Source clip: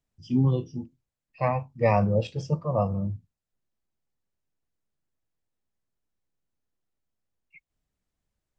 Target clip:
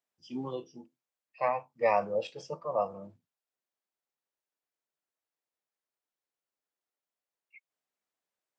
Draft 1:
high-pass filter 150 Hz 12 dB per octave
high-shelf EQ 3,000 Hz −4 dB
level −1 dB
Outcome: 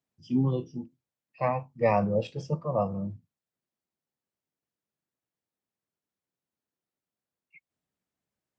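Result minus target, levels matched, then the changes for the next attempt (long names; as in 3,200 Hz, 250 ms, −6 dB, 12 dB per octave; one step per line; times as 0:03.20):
125 Hz band +15.0 dB
change: high-pass filter 510 Hz 12 dB per octave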